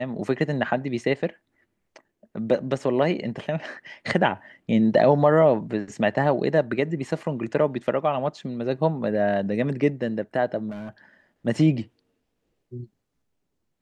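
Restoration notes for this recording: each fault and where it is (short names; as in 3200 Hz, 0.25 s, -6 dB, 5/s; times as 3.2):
10.7–10.9 clipped -31.5 dBFS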